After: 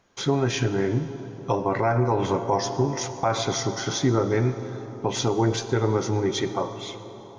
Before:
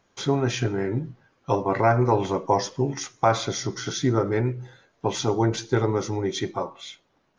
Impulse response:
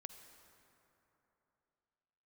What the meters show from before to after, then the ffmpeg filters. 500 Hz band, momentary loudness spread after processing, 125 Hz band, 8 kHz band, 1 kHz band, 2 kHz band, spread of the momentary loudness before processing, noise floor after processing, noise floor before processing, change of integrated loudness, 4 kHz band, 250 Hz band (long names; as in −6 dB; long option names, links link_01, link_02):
0.0 dB, 9 LU, +0.5 dB, +2.0 dB, −1.5 dB, 0.0 dB, 10 LU, −42 dBFS, −68 dBFS, 0.0 dB, +1.5 dB, +0.5 dB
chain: -filter_complex "[0:a]asplit=2[link_01][link_02];[1:a]atrim=start_sample=2205,asetrate=28224,aresample=44100[link_03];[link_02][link_03]afir=irnorm=-1:irlink=0,volume=6dB[link_04];[link_01][link_04]amix=inputs=2:normalize=0,alimiter=limit=-6dB:level=0:latency=1:release=119,volume=-5.5dB"